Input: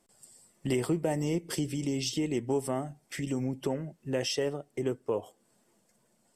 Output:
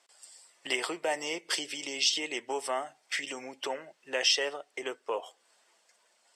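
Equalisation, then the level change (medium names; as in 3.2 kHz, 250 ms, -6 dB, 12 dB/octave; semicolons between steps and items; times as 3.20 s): band-pass 600–3900 Hz; tilt EQ +3.5 dB/octave; +6.0 dB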